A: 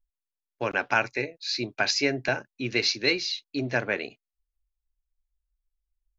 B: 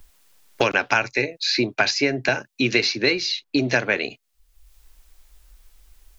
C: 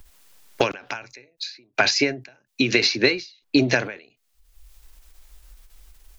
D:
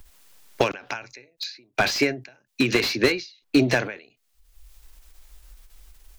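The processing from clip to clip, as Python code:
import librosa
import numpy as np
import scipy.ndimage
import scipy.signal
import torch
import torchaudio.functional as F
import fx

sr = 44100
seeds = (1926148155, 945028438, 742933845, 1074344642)

y1 = fx.band_squash(x, sr, depth_pct=100)
y1 = y1 * 10.0 ** (5.0 / 20.0)
y2 = fx.end_taper(y1, sr, db_per_s=140.0)
y2 = y2 * 10.0 ** (3.5 / 20.0)
y3 = fx.slew_limit(y2, sr, full_power_hz=270.0)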